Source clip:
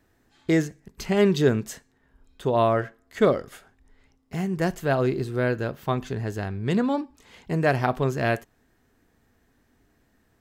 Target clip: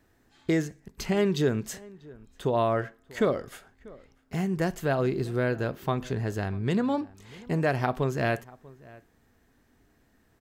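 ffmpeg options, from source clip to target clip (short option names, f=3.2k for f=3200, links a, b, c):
-filter_complex "[0:a]acompressor=threshold=-24dB:ratio=2,asplit=2[a][b];[b]adelay=641.4,volume=-22dB,highshelf=f=4k:g=-14.4[c];[a][c]amix=inputs=2:normalize=0"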